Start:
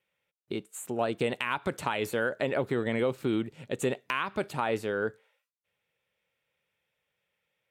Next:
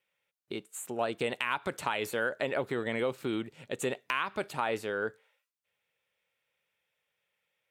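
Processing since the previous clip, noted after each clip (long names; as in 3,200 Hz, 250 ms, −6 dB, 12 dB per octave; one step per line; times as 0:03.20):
low-shelf EQ 390 Hz −7.5 dB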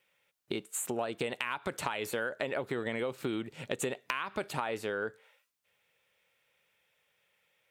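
downward compressor 5 to 1, threshold −39 dBFS, peak gain reduction 12.5 dB
level +7.5 dB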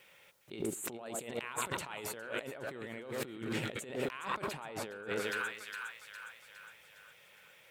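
echo with a time of its own for lows and highs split 1,300 Hz, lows 108 ms, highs 410 ms, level −10.5 dB
compressor whose output falls as the input rises −46 dBFS, ratio −1
level +4.5 dB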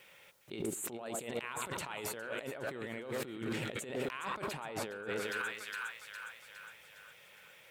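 brickwall limiter −29.5 dBFS, peak gain reduction 8.5 dB
level +2 dB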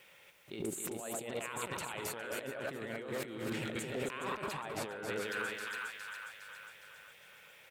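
single-tap delay 266 ms −5.5 dB
level −1 dB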